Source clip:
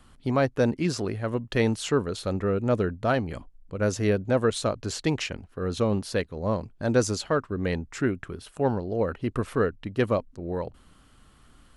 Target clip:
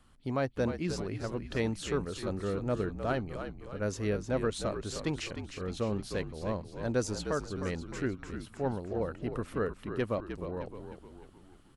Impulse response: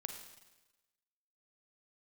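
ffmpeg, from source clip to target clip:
-filter_complex "[0:a]asplit=7[a][b][c][d][e][f][g];[b]adelay=307,afreqshift=-56,volume=-8.5dB[h];[c]adelay=614,afreqshift=-112,volume=-14.5dB[i];[d]adelay=921,afreqshift=-168,volume=-20.5dB[j];[e]adelay=1228,afreqshift=-224,volume=-26.6dB[k];[f]adelay=1535,afreqshift=-280,volume=-32.6dB[l];[g]adelay=1842,afreqshift=-336,volume=-38.6dB[m];[a][h][i][j][k][l][m]amix=inputs=7:normalize=0,volume=-8dB"

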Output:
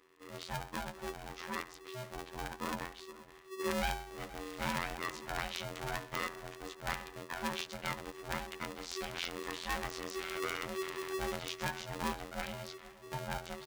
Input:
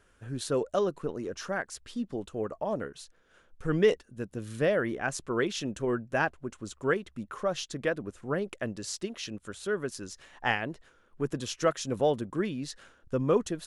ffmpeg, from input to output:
-filter_complex "[0:a]asettb=1/sr,asplit=3[a][b][c];[a]atrim=end=8.924[d];[b]atrim=start=8.92:end=11.4,asetpts=PTS-STARTPTS,afade=t=in:d=0.004:c=qsin,afade=t=out:st=2.476:d=0.004:c=qsin,aeval=exprs='val(0)+0.5*0.0112*sgn(val(0))':c=same[e];[c]atrim=start=11.396[f];[d][e]acrossfade=d=0.004:c1=hsin:c2=qsin[g];[g][f]acrossfade=d=0.004:c1=qsin:c2=hsin,lowpass=2.9k,equalizer=f=330:w=0.67:g=-14.5,bandreject=f=62.26:t=h:w=4,bandreject=f=124.52:t=h:w=4,bandreject=f=186.78:t=h:w=4,bandreject=f=249.04:t=h:w=4,bandreject=f=311.3:t=h:w=4,bandreject=f=373.56:t=h:w=4,bandreject=f=435.82:t=h:w=4,bandreject=f=498.08:t=h:w=4,bandreject=f=560.34:t=h:w=4,bandreject=f=622.6:t=h:w=4,bandreject=f=684.86:t=h:w=4,bandreject=f=747.12:t=h:w=4,bandreject=f=809.38:t=h:w=4,bandreject=f=871.64:t=h:w=4,bandreject=f=933.9:t=h:w=4,bandreject=f=996.16:t=h:w=4,bandreject=f=1.05842k:t=h:w=4,bandreject=f=1.12068k:t=h:w=4,bandreject=f=1.18294k:t=h:w=4,bandreject=f=1.2452k:t=h:w=4,bandreject=f=1.30746k:t=h:w=4,bandreject=f=1.36972k:t=h:w=4,bandreject=f=1.43198k:t=h:w=4,bandreject=f=1.49424k:t=h:w=4,bandreject=f=1.5565k:t=h:w=4,bandreject=f=1.61876k:t=h:w=4,alimiter=level_in=2dB:limit=-24dB:level=0:latency=1:release=295,volume=-2dB,dynaudnorm=f=710:g=7:m=4.5dB,asoftclip=type=tanh:threshold=-31dB,afftfilt=real='hypot(re,im)*cos(PI*b)':imag='0':win_size=2048:overlap=0.75,asplit=2[h][i];[i]adelay=473,lowpass=f=1.1k:p=1,volume=-16dB,asplit=2[j][k];[k]adelay=473,lowpass=f=1.1k:p=1,volume=0.26,asplit=2[l][m];[m]adelay=473,lowpass=f=1.1k:p=1,volume=0.26[n];[h][j][l][n]amix=inputs=4:normalize=0,aeval=exprs='val(0)*sgn(sin(2*PI*380*n/s))':c=same,volume=3.5dB"

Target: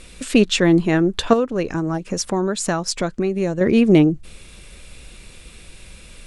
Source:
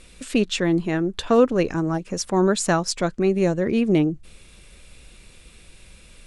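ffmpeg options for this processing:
-filter_complex "[0:a]asettb=1/sr,asplit=3[a][b][c];[a]atrim=end=1.334[d];[b]atrim=start=1.33:end=3.61,asetpts=PTS-STARTPTS,afade=t=in:d=0.004:c=qsin,afade=t=out:st=2.276:d=0.004:c=qsin,acompressor=threshold=-26dB:ratio=3[e];[c]atrim=start=3.606[f];[d][e]acrossfade=d=0.004:c1=hsin:c2=qsin[g];[g][f]acrossfade=d=0.004:c1=qsin:c2=hsin,volume=6dB"

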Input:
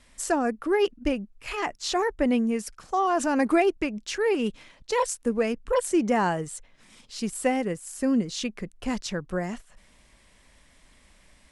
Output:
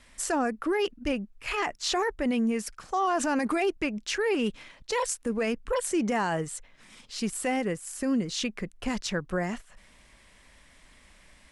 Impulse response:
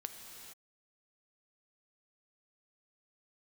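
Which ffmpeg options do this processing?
-filter_complex "[0:a]equalizer=f=1.8k:t=o:w=1.9:g=3.5,acrossover=split=3200[a][b];[a]alimiter=limit=-20dB:level=0:latency=1:release=29[c];[c][b]amix=inputs=2:normalize=0"

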